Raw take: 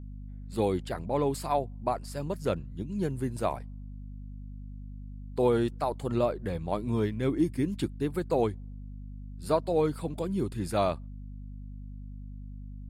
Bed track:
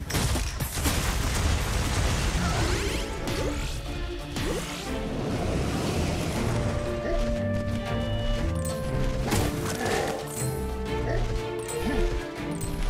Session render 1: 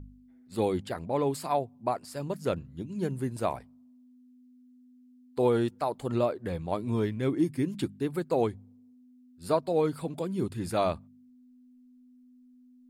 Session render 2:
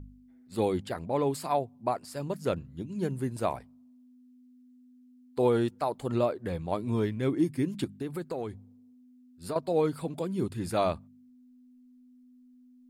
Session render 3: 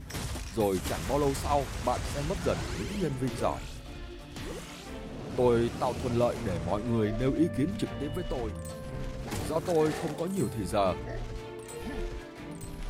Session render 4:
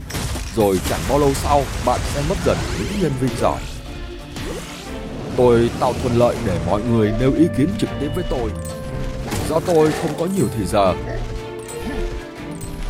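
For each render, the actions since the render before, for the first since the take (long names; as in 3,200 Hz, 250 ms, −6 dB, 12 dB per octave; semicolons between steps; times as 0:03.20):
hum removal 50 Hz, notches 4
0:07.84–0:09.56: downward compressor, threshold −30 dBFS
mix in bed track −10 dB
level +11.5 dB; brickwall limiter −3 dBFS, peak gain reduction 1.5 dB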